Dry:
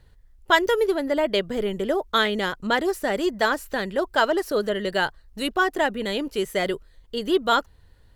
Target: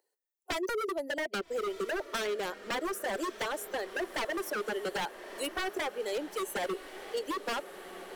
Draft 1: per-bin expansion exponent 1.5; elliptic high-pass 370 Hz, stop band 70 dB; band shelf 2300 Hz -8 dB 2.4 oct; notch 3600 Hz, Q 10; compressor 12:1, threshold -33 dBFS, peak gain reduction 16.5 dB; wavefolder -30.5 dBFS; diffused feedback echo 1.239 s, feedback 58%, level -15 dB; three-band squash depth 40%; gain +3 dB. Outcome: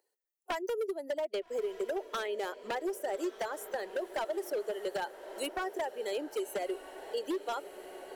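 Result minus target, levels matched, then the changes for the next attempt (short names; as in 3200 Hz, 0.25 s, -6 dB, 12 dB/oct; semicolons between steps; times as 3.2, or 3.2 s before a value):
compressor: peak gain reduction +6.5 dB
change: compressor 12:1, threshold -26 dBFS, peak gain reduction 10 dB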